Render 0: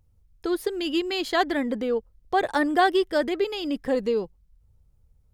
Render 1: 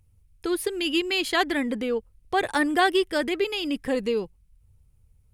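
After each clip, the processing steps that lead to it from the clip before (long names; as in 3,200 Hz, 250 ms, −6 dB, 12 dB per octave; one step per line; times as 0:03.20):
graphic EQ with 15 bands 100 Hz +5 dB, 630 Hz −4 dB, 2,500 Hz +7 dB, 10,000 Hz +10 dB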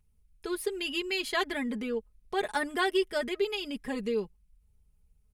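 comb filter 4.8 ms, depth 81%
level −8 dB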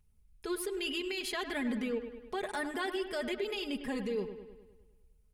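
brickwall limiter −27 dBFS, peak gain reduction 10 dB
on a send: delay with a low-pass on its return 102 ms, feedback 57%, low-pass 3,000 Hz, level −10 dB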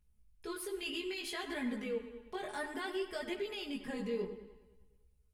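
tuned comb filter 68 Hz, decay 1.1 s, harmonics all, mix 60%
multi-voice chorus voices 2, 0.6 Hz, delay 18 ms, depth 3.7 ms
level +5.5 dB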